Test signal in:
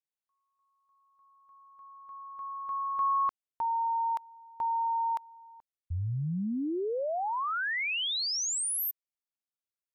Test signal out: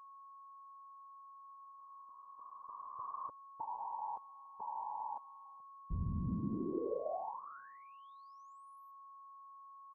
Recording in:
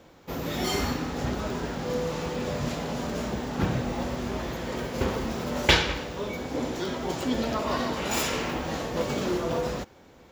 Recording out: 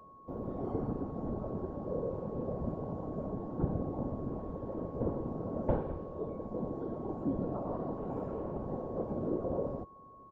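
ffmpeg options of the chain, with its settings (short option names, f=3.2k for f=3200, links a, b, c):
-filter_complex "[0:a]afftfilt=real='hypot(re,im)*cos(2*PI*random(0))':imag='hypot(re,im)*sin(2*PI*random(1))':win_size=512:overlap=0.75,aeval=exprs='val(0)+0.00794*sin(2*PI*1100*n/s)':c=same,acrossover=split=560|2000[a][b][c];[c]acompressor=threshold=-51dB:ratio=8:attack=0.37:release=77:knee=6:detection=rms[d];[a][b][d]amix=inputs=3:normalize=0,firequalizer=gain_entry='entry(560,0);entry(1300,-15);entry(2000,-28)':delay=0.05:min_phase=1"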